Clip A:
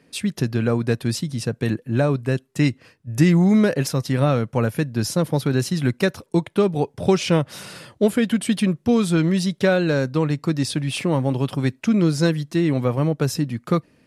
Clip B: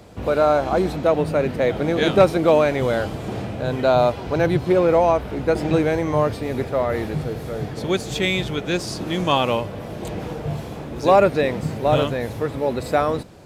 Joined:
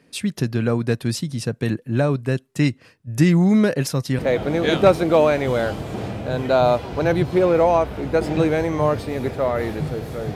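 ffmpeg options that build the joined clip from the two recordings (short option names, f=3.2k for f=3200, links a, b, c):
-filter_complex "[0:a]apad=whole_dur=10.35,atrim=end=10.35,atrim=end=4.192[a];[1:a]atrim=start=1.528:end=7.69[b];[a][b]acrossfade=d=0.004:c1=hsin:c2=hsin"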